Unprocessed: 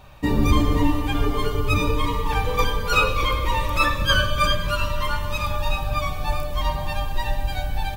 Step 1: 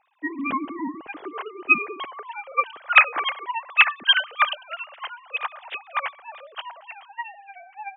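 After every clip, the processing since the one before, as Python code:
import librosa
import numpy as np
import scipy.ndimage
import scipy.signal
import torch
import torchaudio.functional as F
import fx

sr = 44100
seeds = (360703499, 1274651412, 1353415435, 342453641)

y = fx.sine_speech(x, sr)
y = fx.upward_expand(y, sr, threshold_db=-27.0, expansion=1.5)
y = F.gain(torch.from_numpy(y), -2.0).numpy()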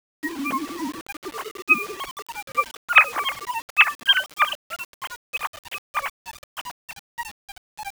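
y = fx.quant_dither(x, sr, seeds[0], bits=6, dither='none')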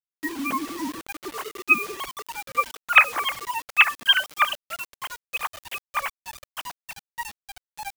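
y = fx.high_shelf(x, sr, hz=7800.0, db=4.5)
y = F.gain(torch.from_numpy(y), -1.0).numpy()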